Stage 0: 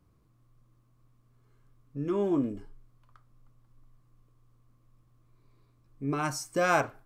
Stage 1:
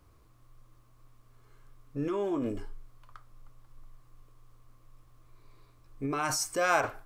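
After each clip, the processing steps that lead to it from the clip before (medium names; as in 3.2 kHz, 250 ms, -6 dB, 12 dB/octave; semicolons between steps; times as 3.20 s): peaking EQ 180 Hz -12 dB 1.6 oct; in parallel at -1 dB: compressor with a negative ratio -39 dBFS, ratio -0.5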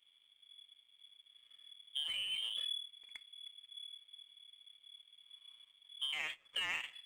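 compression 5:1, threshold -35 dBFS, peak gain reduction 13.5 dB; frequency inversion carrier 3.4 kHz; power-law waveshaper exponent 1.4; trim +1.5 dB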